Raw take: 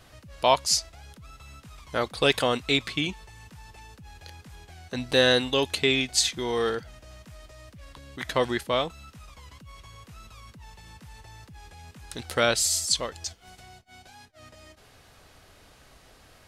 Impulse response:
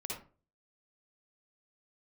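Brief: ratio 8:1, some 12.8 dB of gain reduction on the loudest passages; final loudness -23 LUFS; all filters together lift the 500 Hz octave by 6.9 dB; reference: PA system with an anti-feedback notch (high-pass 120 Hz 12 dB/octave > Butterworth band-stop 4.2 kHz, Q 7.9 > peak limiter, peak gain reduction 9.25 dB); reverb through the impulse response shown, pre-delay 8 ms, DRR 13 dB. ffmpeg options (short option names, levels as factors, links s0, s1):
-filter_complex "[0:a]equalizer=f=500:t=o:g=8,acompressor=threshold=0.0631:ratio=8,asplit=2[s0][s1];[1:a]atrim=start_sample=2205,adelay=8[s2];[s1][s2]afir=irnorm=-1:irlink=0,volume=0.211[s3];[s0][s3]amix=inputs=2:normalize=0,highpass=120,asuperstop=centerf=4200:order=8:qfactor=7.9,volume=2.82,alimiter=limit=0.266:level=0:latency=1"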